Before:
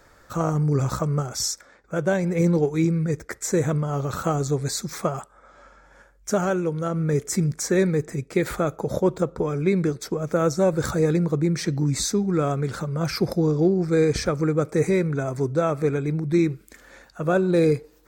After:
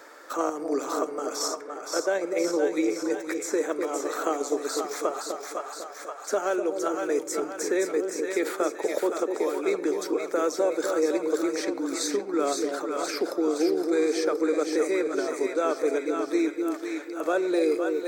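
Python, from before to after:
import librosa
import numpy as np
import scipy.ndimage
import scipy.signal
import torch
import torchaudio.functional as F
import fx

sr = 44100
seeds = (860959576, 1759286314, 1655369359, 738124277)

p1 = scipy.signal.sosfilt(scipy.signal.butter(8, 280.0, 'highpass', fs=sr, output='sos'), x)
p2 = fx.vibrato(p1, sr, rate_hz=2.0, depth_cents=6.5)
p3 = fx.level_steps(p2, sr, step_db=13)
p4 = p2 + (p3 * librosa.db_to_amplitude(2.0))
p5 = fx.echo_split(p4, sr, split_hz=640.0, low_ms=249, high_ms=517, feedback_pct=52, wet_db=-5.5)
p6 = fx.room_shoebox(p5, sr, seeds[0], volume_m3=2000.0, walls='furnished', distance_m=0.41)
p7 = fx.band_squash(p6, sr, depth_pct=40)
y = p7 * librosa.db_to_amplitude(-7.5)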